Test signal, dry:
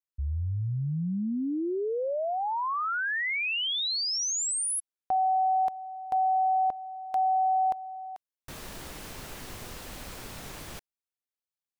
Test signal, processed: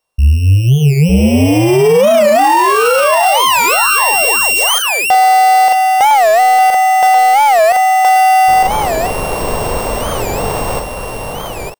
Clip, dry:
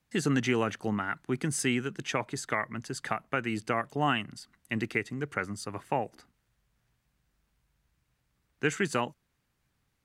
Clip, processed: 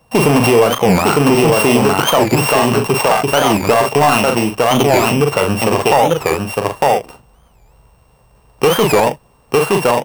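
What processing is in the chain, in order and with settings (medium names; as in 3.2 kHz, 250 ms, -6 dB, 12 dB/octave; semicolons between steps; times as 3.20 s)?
sorted samples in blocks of 16 samples; bass shelf 160 Hz +3.5 dB; on a send: delay 905 ms -5 dB; on the sum: saturation -24 dBFS; high-order bell 690 Hz +11 dB; doubling 42 ms -7 dB; loudness maximiser +21 dB; warped record 45 rpm, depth 250 cents; trim -1.5 dB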